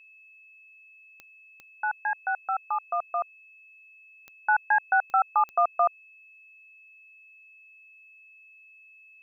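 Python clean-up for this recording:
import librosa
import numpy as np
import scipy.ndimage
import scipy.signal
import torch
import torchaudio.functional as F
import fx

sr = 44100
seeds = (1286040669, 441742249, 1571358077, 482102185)

y = fx.fix_declick_ar(x, sr, threshold=10.0)
y = fx.notch(y, sr, hz=2600.0, q=30.0)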